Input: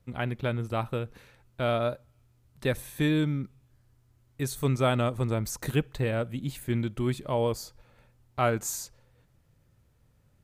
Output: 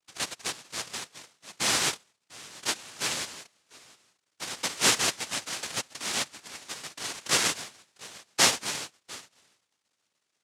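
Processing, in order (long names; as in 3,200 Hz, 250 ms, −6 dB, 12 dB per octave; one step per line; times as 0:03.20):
noise gate −52 dBFS, range −18 dB
surface crackle 330 per second −61 dBFS
slap from a distant wall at 120 metres, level −20 dB
high-pass filter sweep 2,000 Hz → 920 Hz, 0:00.63–0:01.74
cochlear-implant simulation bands 1
level +2.5 dB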